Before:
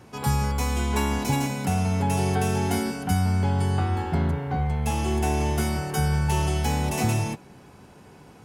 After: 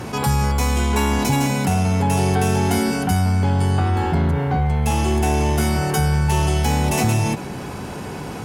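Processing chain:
in parallel at −3 dB: asymmetric clip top −24 dBFS
on the sum: envelope flattener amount 50%

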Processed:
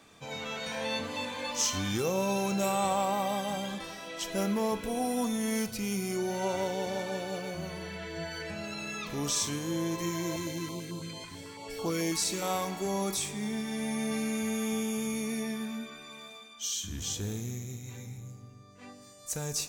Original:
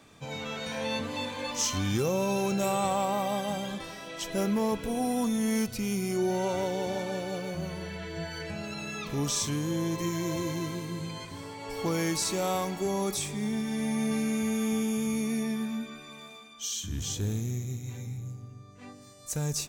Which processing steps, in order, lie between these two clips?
low-shelf EQ 330 Hz −5.5 dB
convolution reverb, pre-delay 3 ms, DRR 12.5 dB
0:10.36–0:12.42: notch on a step sequencer 9.1 Hz 590–1,900 Hz

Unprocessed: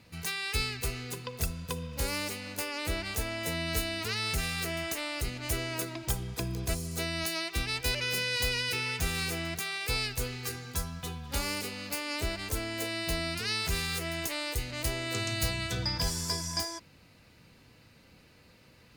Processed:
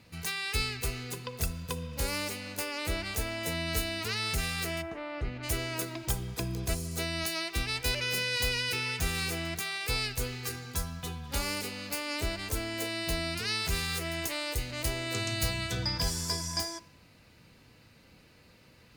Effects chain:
0:04.81–0:05.42: low-pass filter 1,100 Hz → 2,400 Hz 12 dB per octave
dense smooth reverb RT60 0.8 s, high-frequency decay 0.8×, DRR 19 dB

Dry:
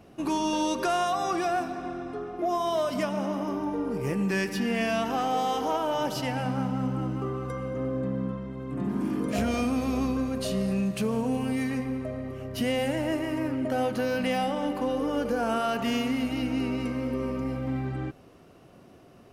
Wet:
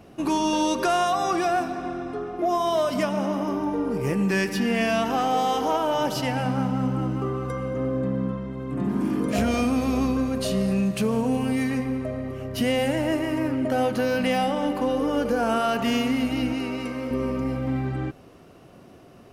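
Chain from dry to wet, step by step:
0:16.53–0:17.11: low-shelf EQ 250 Hz −10 dB
level +4 dB

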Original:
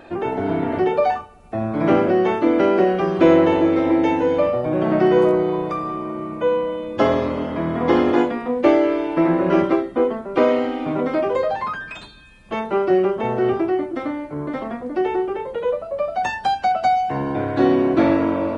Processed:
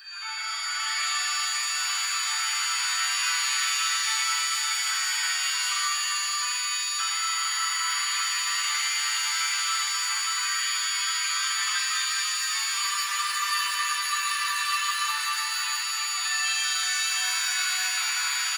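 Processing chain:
elliptic high-pass filter 1,200 Hz, stop band 60 dB
spectral tilt +3.5 dB per octave
comb filter 6.9 ms, depth 95%
downward compressor 3 to 1, threshold −29 dBFS, peak gain reduction 8.5 dB
flanger 0.22 Hz, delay 1.2 ms, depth 1.3 ms, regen −37%
steady tone 4,600 Hz −41 dBFS
single-tap delay 573 ms −3.5 dB
frozen spectrum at 0:12.75, 2.30 s
reverb with rising layers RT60 3.1 s, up +7 semitones, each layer −2 dB, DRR −6.5 dB
level −4 dB

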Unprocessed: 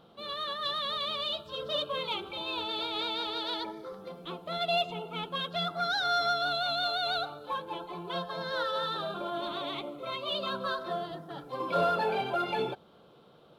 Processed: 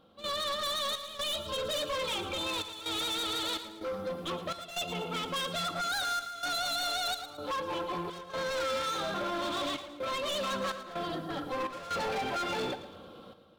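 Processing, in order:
parametric band 90 Hz +13 dB 0.41 octaves
notch filter 850 Hz, Q 14
comb filter 3.7 ms, depth 52%
in parallel at +2.5 dB: downward compressor, threshold −38 dBFS, peak gain reduction 15.5 dB
on the sum: hard clipping −31 dBFS, distortion −7 dB
gate pattern ".xxx.xxxxxx.xxx" 63 BPM −12 dB
on a send: repeating echo 112 ms, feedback 44%, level −12.5 dB

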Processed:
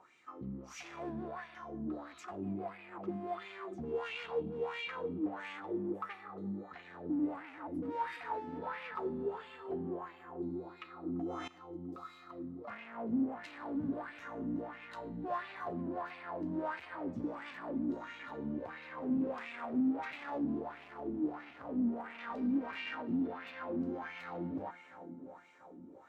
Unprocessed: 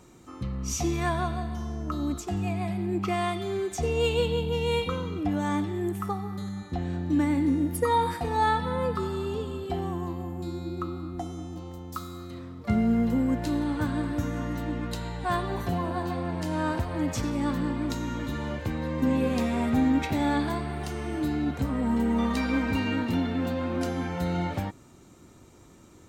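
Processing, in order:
0:20.18–0:21.96: running median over 25 samples
tape delay 344 ms, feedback 73%, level −13 dB, low-pass 2,400 Hz
soft clipping −30 dBFS, distortion −8 dB
LFO wah 1.5 Hz 230–2,500 Hz, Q 3.6
0:11.06–0:11.48: envelope flattener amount 70%
level +4 dB

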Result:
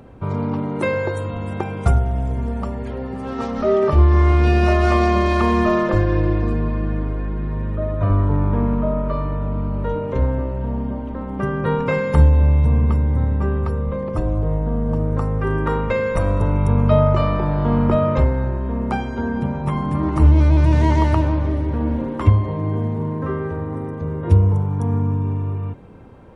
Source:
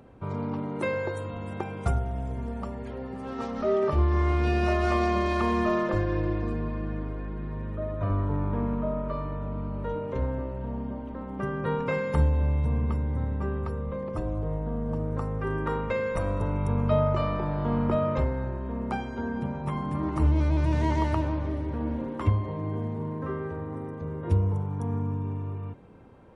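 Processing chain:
low-shelf EQ 120 Hz +4.5 dB
level +7.5 dB

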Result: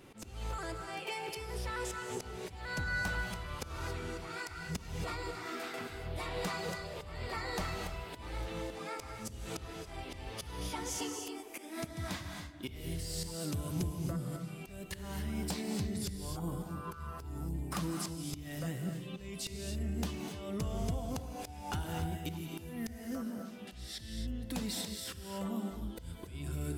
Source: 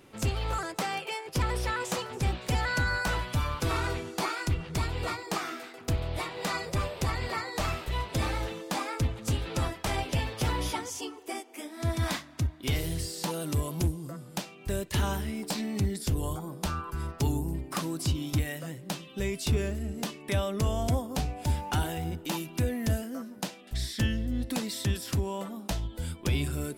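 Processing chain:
camcorder AGC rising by 21 dB per second
low-shelf EQ 140 Hz +3.5 dB
downward compressor 6 to 1, threshold −33 dBFS, peak gain reduction 12.5 dB
dynamic equaliser 180 Hz, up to +6 dB, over −55 dBFS, Q 5.4
volume swells 238 ms
reverb whose tail is shaped and stops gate 300 ms rising, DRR 4 dB
level −2 dB

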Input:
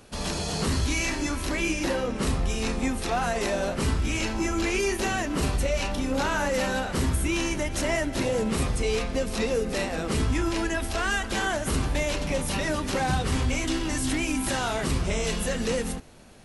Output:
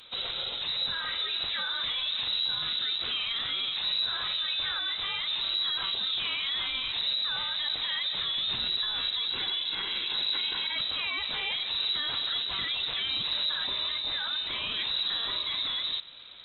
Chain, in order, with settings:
0:09.28–0:10.79: lower of the sound and its delayed copy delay 1.7 ms
brickwall limiter −26 dBFS, peak gain reduction 11 dB
voice inversion scrambler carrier 3,900 Hz
0:08.36–0:08.78: low-shelf EQ 320 Hz +11 dB
level +2 dB
Opus 32 kbit/s 48,000 Hz

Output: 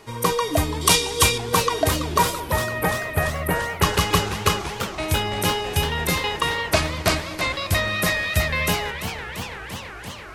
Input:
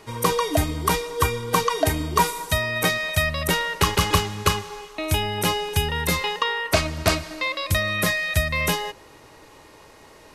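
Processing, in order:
0:00.81–0:01.38: flat-topped bell 5,200 Hz +12 dB 2.4 octaves
0:02.40–0:03.82: Butterworth band-reject 5,100 Hz, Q 0.56
feedback echo with a swinging delay time 336 ms, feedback 79%, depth 178 cents, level −10.5 dB

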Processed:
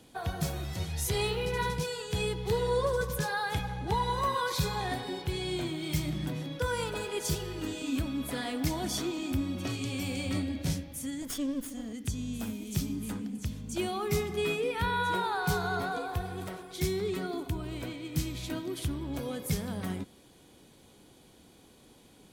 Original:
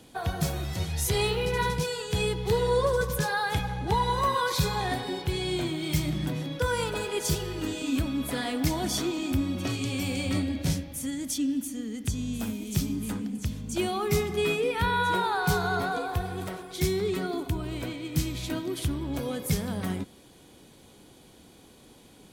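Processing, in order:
0:11.22–0:11.93: lower of the sound and its delayed copy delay 0.58 ms
level −4 dB

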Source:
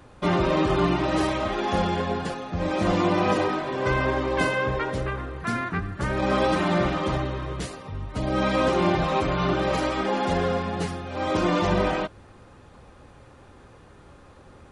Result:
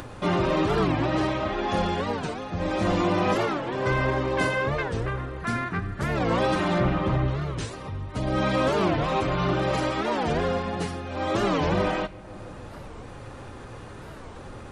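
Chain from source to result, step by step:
0:06.80–0:07.28: bass and treble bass +5 dB, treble −13 dB
in parallel at −7.5 dB: gain into a clipping stage and back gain 18.5 dB
0:01.06–0:01.70: on the sum: high-frequency loss of the air 79 metres
tape delay 159 ms, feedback 83%, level −21.5 dB, low-pass 1,200 Hz
upward compression, threshold −26 dBFS
on a send at −9 dB: Chebyshev band-stop filter 130–2,000 Hz, order 3 + convolution reverb RT60 1.2 s, pre-delay 5 ms
on the sum: wow of a warped record 45 rpm, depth 250 cents
level −4 dB

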